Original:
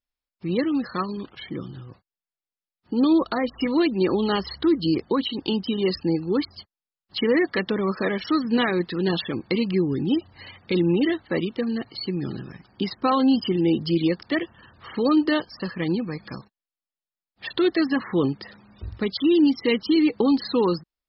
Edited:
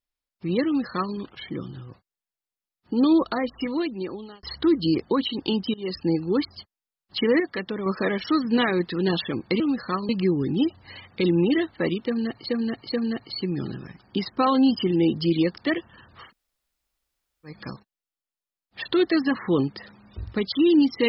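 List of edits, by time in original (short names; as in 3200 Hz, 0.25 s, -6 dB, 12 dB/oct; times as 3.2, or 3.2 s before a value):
0.66–1.15 copy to 9.6
3.21–4.43 fade out
5.74–6.07 fade in, from -22.5 dB
7.4–7.86 gain -5.5 dB
11.57–12 loop, 3 plays
14.9–16.16 room tone, crossfade 0.16 s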